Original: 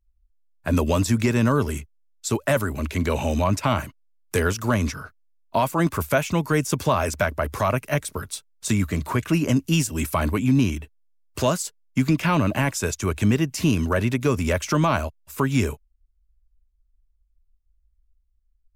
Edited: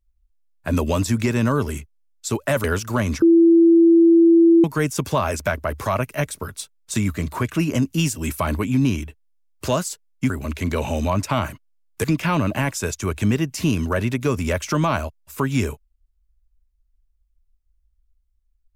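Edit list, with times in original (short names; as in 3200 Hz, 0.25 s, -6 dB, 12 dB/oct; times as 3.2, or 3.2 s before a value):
2.64–4.38 move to 12.04
4.96–6.38 bleep 334 Hz -9 dBFS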